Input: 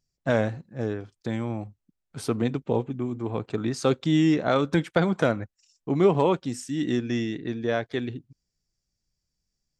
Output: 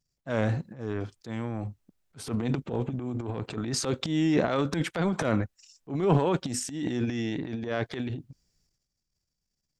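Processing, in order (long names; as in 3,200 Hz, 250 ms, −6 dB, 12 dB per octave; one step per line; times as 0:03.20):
transient designer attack −9 dB, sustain +12 dB
level −4 dB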